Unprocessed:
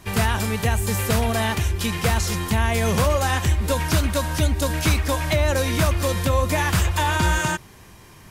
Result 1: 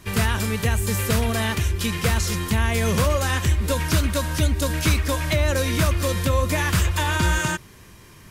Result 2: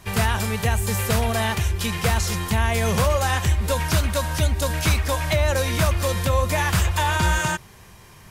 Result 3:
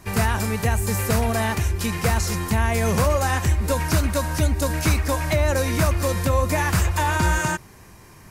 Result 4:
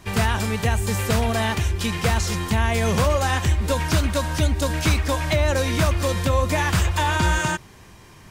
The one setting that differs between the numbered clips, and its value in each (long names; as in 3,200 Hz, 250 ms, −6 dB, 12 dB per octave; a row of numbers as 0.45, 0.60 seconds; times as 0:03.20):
parametric band, centre frequency: 780, 290, 3,300, 12,000 Hertz